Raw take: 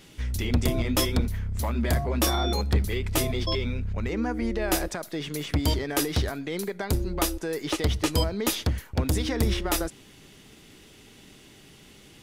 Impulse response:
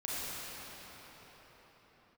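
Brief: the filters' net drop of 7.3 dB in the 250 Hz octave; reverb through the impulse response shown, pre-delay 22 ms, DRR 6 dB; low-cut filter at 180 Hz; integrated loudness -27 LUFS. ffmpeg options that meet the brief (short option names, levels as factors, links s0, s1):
-filter_complex "[0:a]highpass=180,equalizer=f=250:t=o:g=-8.5,asplit=2[s0][s1];[1:a]atrim=start_sample=2205,adelay=22[s2];[s1][s2]afir=irnorm=-1:irlink=0,volume=0.266[s3];[s0][s3]amix=inputs=2:normalize=0,volume=1.41"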